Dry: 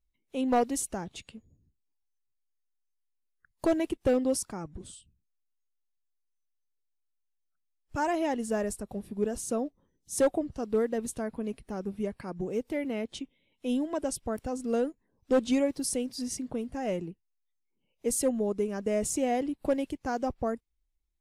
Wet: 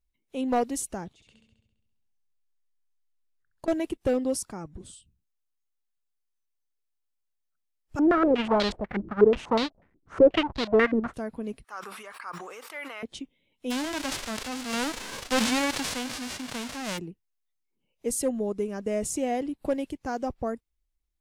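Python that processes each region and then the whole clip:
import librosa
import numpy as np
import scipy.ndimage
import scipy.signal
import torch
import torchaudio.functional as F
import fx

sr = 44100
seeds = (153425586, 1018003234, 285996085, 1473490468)

y = fx.chain(x, sr, fx.high_shelf(hz=11000.0, db=-11.5),
    fx.level_steps(step_db=20),
    fx.room_flutter(wall_m=11.5, rt60_s=1.0), at=(1.13, 3.68))
y = fx.chain(y, sr, fx.halfwave_hold(),
    fx.filter_held_lowpass(hz=8.2, low_hz=320.0, high_hz=4100.0), at=(7.99, 11.14))
y = fx.chain(y, sr, fx.highpass_res(hz=1200.0, q=3.6),
    fx.sustainer(db_per_s=28.0), at=(11.64, 13.03))
y = fx.envelope_flatten(y, sr, power=0.1, at=(13.7, 16.97), fade=0.02)
y = fx.air_absorb(y, sr, metres=69.0, at=(13.7, 16.97), fade=0.02)
y = fx.sustainer(y, sr, db_per_s=29.0, at=(13.7, 16.97), fade=0.02)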